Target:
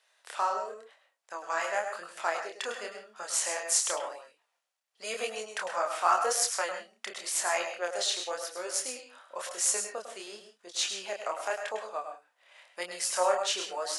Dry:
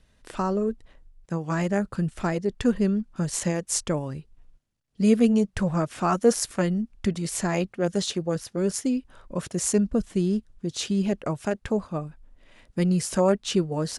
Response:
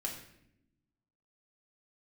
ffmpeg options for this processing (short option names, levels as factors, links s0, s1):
-filter_complex "[0:a]asplit=2[s0][s1];[1:a]atrim=start_sample=2205,atrim=end_sample=3528,adelay=102[s2];[s1][s2]afir=irnorm=-1:irlink=0,volume=0.447[s3];[s0][s3]amix=inputs=2:normalize=0,flanger=delay=22.5:depth=8:speed=0.93,highpass=f=660:w=0.5412,highpass=f=660:w=1.3066,volume=1.58"